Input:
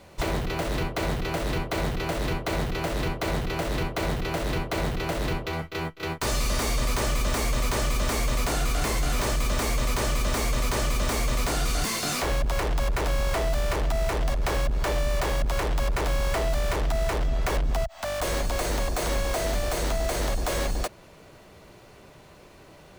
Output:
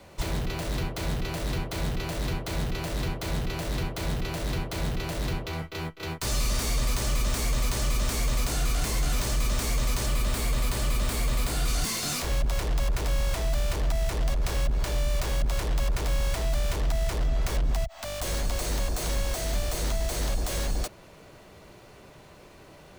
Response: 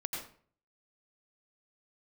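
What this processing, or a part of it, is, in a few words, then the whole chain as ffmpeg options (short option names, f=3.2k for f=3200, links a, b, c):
one-band saturation: -filter_complex "[0:a]asettb=1/sr,asplit=3[a][b][c];[a]atrim=end=10.064[d];[b]atrim=start=10.06:end=11.68,asetpts=PTS-STARTPTS,afade=t=in:d=0.004:c=qsin,afade=t=out:st=1.616:d=0.004:c=qsin,equalizer=f=6k:t=o:w=0.46:g=-5.5[e];[c]atrim=start=11.676[f];[d][e]acrossfade=d=0.004:c1=hsin:c2=qsin[g];[g][f]acrossfade=d=0.004:c1=qsin:c2=hsin,acrossover=split=210|3100[h][i][j];[i]asoftclip=type=tanh:threshold=-34.5dB[k];[h][k][j]amix=inputs=3:normalize=0"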